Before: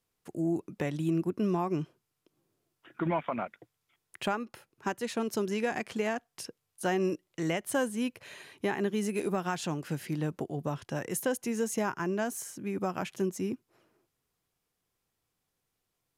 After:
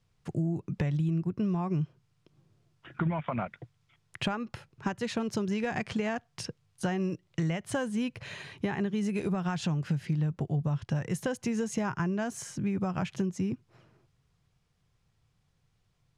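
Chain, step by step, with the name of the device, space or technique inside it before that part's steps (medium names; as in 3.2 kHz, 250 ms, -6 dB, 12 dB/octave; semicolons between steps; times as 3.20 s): jukebox (low-pass 6.1 kHz 12 dB/octave; resonant low shelf 200 Hz +10.5 dB, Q 1.5; compression 5:1, threshold -33 dBFS, peak gain reduction 12 dB); trim +5.5 dB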